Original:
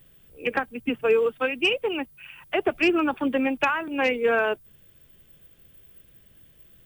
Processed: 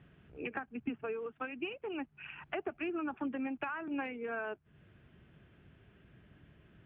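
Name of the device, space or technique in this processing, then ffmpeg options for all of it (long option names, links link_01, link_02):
bass amplifier: -af "acompressor=threshold=-37dB:ratio=6,highpass=68,equalizer=frequency=510:width_type=q:width=4:gain=-9,equalizer=frequency=1000:width_type=q:width=4:gain=-3,equalizer=frequency=2000:width_type=q:width=4:gain=-4,lowpass=frequency=2300:width=0.5412,lowpass=frequency=2300:width=1.3066,volume=3dB"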